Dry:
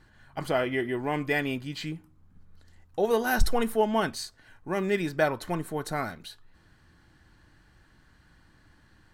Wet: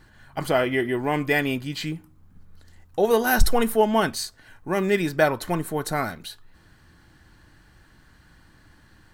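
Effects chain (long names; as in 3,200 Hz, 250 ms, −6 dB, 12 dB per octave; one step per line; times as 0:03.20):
high-shelf EQ 11,000 Hz +8 dB
level +5 dB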